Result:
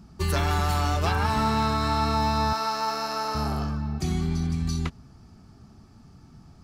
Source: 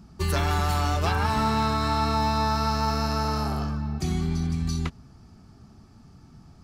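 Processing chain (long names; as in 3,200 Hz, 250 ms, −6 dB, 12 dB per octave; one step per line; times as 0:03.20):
0:02.53–0:03.35: high-pass filter 410 Hz 12 dB per octave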